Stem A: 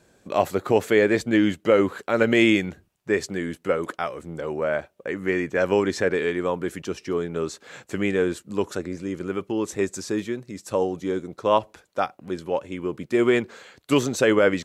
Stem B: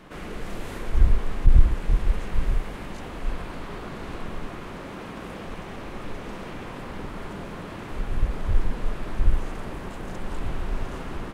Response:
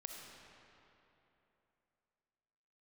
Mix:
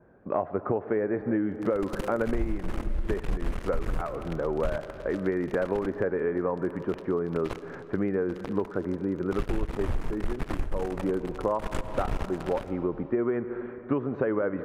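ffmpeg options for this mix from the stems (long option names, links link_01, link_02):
-filter_complex "[0:a]lowpass=frequency=1500:width=0.5412,lowpass=frequency=1500:width=1.3066,volume=0dB,asplit=3[link_01][link_02][link_03];[link_02]volume=-6.5dB[link_04];[1:a]acrusher=bits=3:mix=0:aa=0.5,adelay=1400,volume=2.5dB,asplit=2[link_05][link_06];[link_06]volume=-9dB[link_07];[link_03]apad=whole_len=561423[link_08];[link_05][link_08]sidechaingate=range=-33dB:threshold=-44dB:ratio=16:detection=peak[link_09];[2:a]atrim=start_sample=2205[link_10];[link_04][link_07]amix=inputs=2:normalize=0[link_11];[link_11][link_10]afir=irnorm=-1:irlink=0[link_12];[link_01][link_09][link_12]amix=inputs=3:normalize=0,adynamicequalizer=threshold=0.00562:dfrequency=3700:dqfactor=1.4:tfrequency=3700:tqfactor=1.4:attack=5:release=100:ratio=0.375:range=2:mode=cutabove:tftype=bell,acompressor=threshold=-23dB:ratio=16"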